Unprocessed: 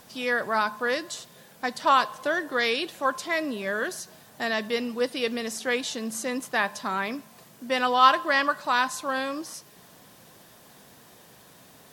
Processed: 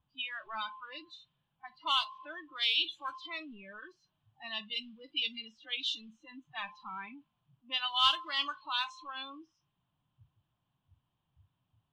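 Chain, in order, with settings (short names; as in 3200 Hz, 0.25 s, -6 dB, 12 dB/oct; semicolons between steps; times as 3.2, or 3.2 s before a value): zero-crossing step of -31.5 dBFS; modulation noise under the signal 12 dB; 2.5–4.97 high shelf 9600 Hz +6 dB; spectral noise reduction 26 dB; EQ curve 140 Hz 0 dB, 210 Hz -13 dB, 310 Hz -12 dB, 460 Hz -24 dB, 1000 Hz -6 dB, 2000 Hz -9 dB, 3100 Hz +12 dB, 5600 Hz -8 dB, 13000 Hz -29 dB; low-pass opened by the level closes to 910 Hz, open at -21 dBFS; gain -7 dB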